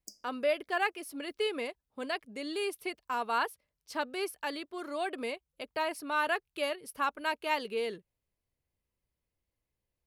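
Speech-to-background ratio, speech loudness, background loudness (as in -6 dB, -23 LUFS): 19.5 dB, -34.5 LUFS, -54.0 LUFS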